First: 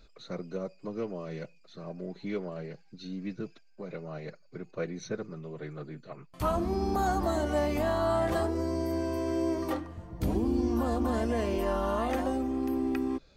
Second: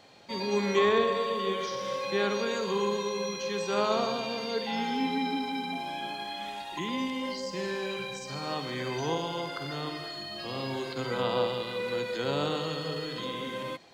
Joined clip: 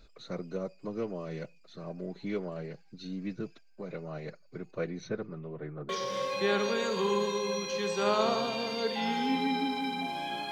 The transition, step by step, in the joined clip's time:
first
0:04.77–0:05.89: low-pass filter 6,900 Hz → 1,200 Hz
0:05.89: continue with second from 0:01.60

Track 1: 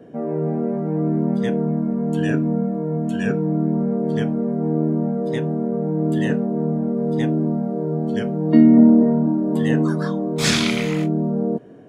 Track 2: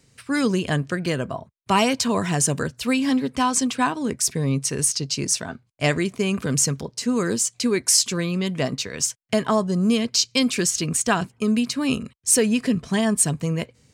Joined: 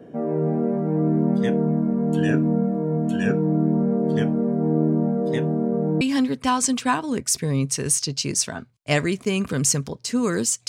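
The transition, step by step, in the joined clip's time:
track 1
0:06.01: continue with track 2 from 0:02.94

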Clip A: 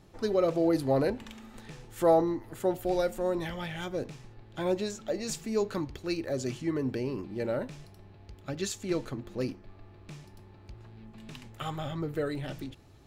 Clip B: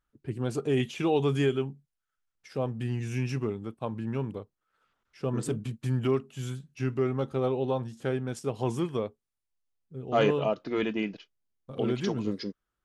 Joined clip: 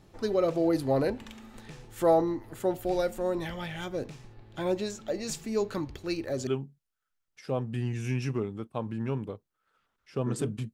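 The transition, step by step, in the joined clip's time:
clip A
0:06.47: continue with clip B from 0:01.54

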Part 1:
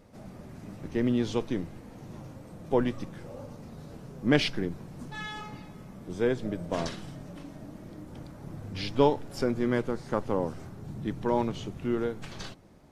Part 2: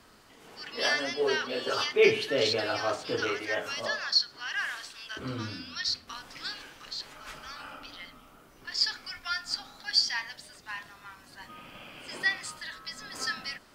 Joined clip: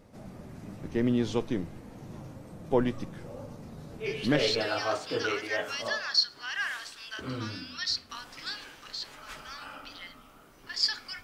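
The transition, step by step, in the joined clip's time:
part 1
0:04.33: continue with part 2 from 0:02.31, crossfade 0.72 s equal-power

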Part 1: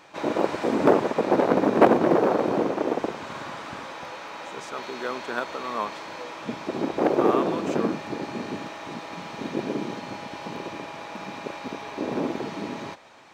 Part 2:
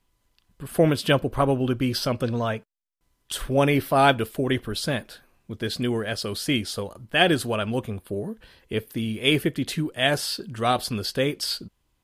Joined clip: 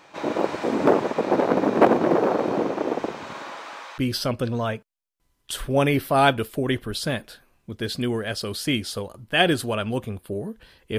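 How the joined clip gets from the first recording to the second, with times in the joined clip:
part 1
0:03.33–0:03.98: high-pass filter 210 Hz → 980 Hz
0:03.98: continue with part 2 from 0:01.79

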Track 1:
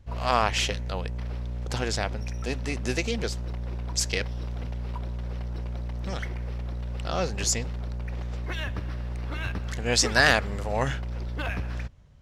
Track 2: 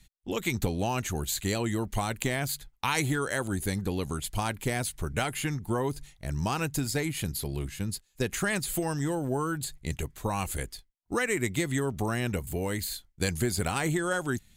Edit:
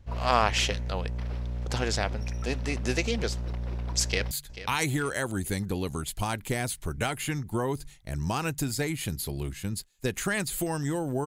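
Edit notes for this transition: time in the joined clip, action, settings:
track 1
0:04.05–0:04.31: delay throw 440 ms, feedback 35%, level −13.5 dB
0:04.31: continue with track 2 from 0:02.47

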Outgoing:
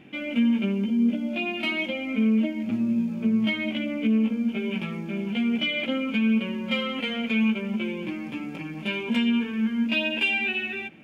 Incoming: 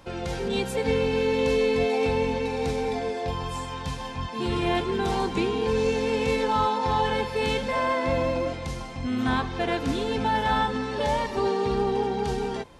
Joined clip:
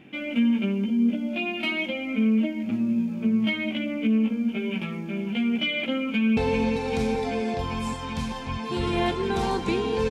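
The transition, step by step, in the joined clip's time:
outgoing
0:06.07–0:06.37: delay throw 390 ms, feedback 85%, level −6.5 dB
0:06.37: continue with incoming from 0:02.06

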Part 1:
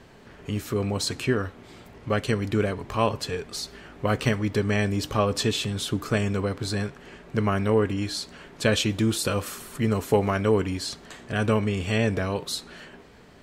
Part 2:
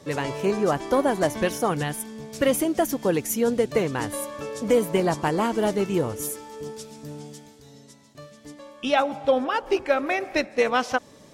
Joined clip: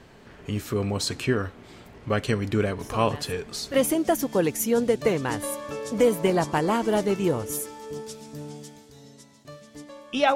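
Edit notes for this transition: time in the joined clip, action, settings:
part 1
0:02.79: mix in part 2 from 0:01.49 0.95 s −12 dB
0:03.74: continue with part 2 from 0:02.44

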